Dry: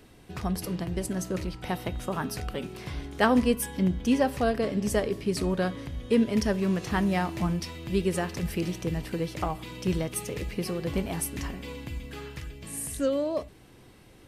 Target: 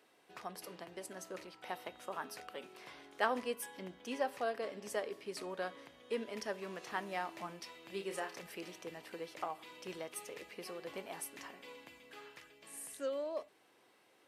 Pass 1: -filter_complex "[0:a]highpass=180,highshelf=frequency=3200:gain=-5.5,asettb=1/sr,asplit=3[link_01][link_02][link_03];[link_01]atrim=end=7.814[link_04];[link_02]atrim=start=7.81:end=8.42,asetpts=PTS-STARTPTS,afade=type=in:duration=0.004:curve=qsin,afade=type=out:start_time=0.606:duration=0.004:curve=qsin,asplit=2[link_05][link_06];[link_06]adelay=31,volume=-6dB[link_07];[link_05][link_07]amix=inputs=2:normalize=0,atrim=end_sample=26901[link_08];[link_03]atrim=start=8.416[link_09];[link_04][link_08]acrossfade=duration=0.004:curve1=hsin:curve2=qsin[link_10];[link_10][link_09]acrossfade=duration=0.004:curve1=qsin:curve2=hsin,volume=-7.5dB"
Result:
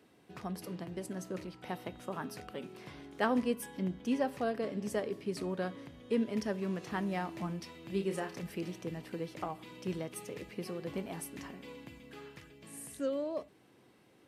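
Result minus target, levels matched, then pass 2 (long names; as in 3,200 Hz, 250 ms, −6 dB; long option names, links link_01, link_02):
250 Hz band +7.5 dB
-filter_complex "[0:a]highpass=540,highshelf=frequency=3200:gain=-5.5,asettb=1/sr,asplit=3[link_01][link_02][link_03];[link_01]atrim=end=7.814[link_04];[link_02]atrim=start=7.81:end=8.42,asetpts=PTS-STARTPTS,afade=type=in:duration=0.004:curve=qsin,afade=type=out:start_time=0.606:duration=0.004:curve=qsin,asplit=2[link_05][link_06];[link_06]adelay=31,volume=-6dB[link_07];[link_05][link_07]amix=inputs=2:normalize=0,atrim=end_sample=26901[link_08];[link_03]atrim=start=8.416[link_09];[link_04][link_08]acrossfade=duration=0.004:curve1=hsin:curve2=qsin[link_10];[link_10][link_09]acrossfade=duration=0.004:curve1=qsin:curve2=hsin,volume=-7.5dB"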